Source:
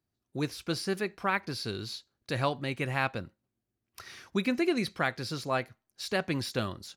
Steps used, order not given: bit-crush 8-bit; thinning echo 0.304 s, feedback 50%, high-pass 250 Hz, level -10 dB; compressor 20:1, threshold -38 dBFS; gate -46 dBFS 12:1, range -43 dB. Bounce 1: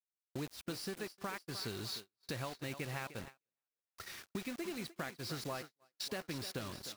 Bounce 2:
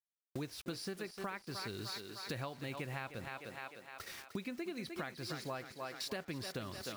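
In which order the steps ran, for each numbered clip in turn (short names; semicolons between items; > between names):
compressor > bit-crush > thinning echo > gate; bit-crush > gate > thinning echo > compressor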